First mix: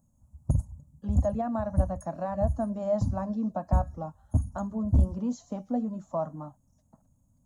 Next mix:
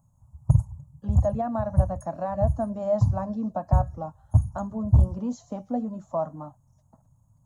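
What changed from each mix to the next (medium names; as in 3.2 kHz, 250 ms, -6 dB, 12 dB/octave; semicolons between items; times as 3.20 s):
background: add graphic EQ 125/250/500/1000 Hz +12/-9/-4/+8 dB; master: add peaking EQ 770 Hz +3.5 dB 1.5 oct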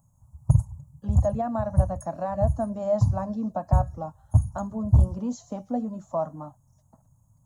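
master: add treble shelf 5.4 kHz +7 dB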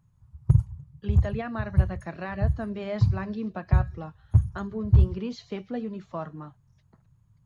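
master: remove FFT filter 190 Hz 0 dB, 270 Hz +7 dB, 400 Hz -13 dB, 570 Hz +10 dB, 890 Hz +8 dB, 2.2 kHz -19 dB, 4.5 kHz -9 dB, 6.9 kHz +14 dB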